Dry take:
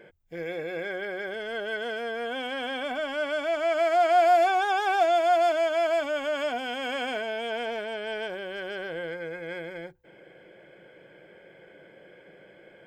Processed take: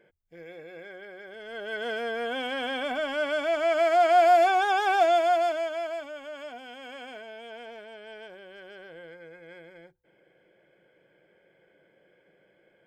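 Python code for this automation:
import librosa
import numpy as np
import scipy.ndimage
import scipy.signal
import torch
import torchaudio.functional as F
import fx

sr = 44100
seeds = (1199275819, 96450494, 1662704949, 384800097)

y = fx.gain(x, sr, db=fx.line((1.27, -11.0), (1.9, 1.0), (5.13, 1.0), (6.16, -11.5)))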